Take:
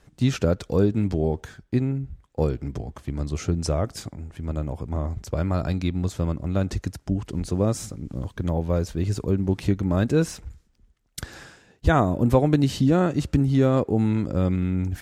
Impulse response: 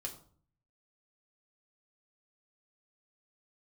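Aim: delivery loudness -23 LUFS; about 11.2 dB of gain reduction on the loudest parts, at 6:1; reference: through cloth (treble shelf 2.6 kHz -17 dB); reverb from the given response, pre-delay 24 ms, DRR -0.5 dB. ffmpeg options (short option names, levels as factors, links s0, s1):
-filter_complex "[0:a]acompressor=threshold=0.0447:ratio=6,asplit=2[s0][s1];[1:a]atrim=start_sample=2205,adelay=24[s2];[s1][s2]afir=irnorm=-1:irlink=0,volume=1.26[s3];[s0][s3]amix=inputs=2:normalize=0,highshelf=f=2600:g=-17,volume=2.11"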